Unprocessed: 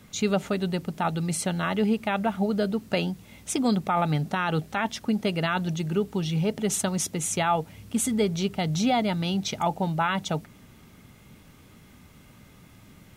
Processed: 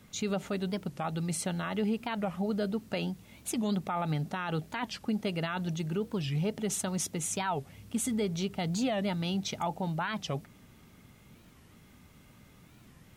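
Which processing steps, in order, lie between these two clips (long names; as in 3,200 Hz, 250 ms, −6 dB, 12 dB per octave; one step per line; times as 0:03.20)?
brickwall limiter −17.5 dBFS, peak gain reduction 4 dB
wow of a warped record 45 rpm, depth 250 cents
level −5 dB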